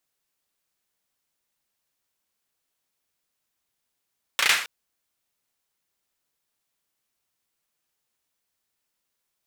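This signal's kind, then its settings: hand clap length 0.27 s, apart 34 ms, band 2100 Hz, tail 0.45 s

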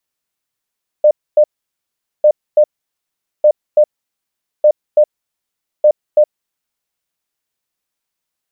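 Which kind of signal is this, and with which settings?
beep pattern sine 602 Hz, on 0.07 s, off 0.26 s, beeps 2, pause 0.80 s, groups 5, -4.5 dBFS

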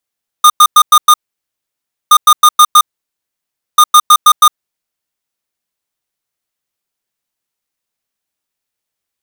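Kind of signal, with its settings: beep pattern square 1220 Hz, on 0.06 s, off 0.10 s, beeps 5, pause 0.97 s, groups 3, -3.5 dBFS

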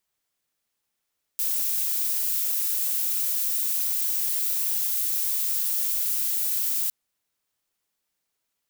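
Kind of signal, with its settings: noise violet, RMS -25.5 dBFS 5.51 s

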